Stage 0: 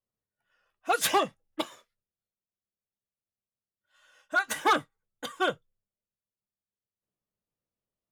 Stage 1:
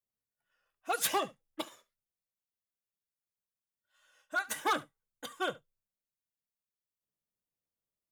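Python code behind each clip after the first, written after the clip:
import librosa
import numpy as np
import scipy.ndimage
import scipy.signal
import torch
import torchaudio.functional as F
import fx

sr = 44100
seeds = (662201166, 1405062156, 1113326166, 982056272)

y = fx.high_shelf(x, sr, hz=8100.0, db=8.0)
y = y + 10.0 ** (-20.5 / 20.0) * np.pad(y, (int(72 * sr / 1000.0), 0))[:len(y)]
y = F.gain(torch.from_numpy(y), -7.0).numpy()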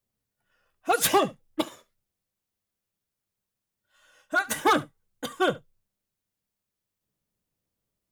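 y = fx.low_shelf(x, sr, hz=430.0, db=10.0)
y = F.gain(torch.from_numpy(y), 7.0).numpy()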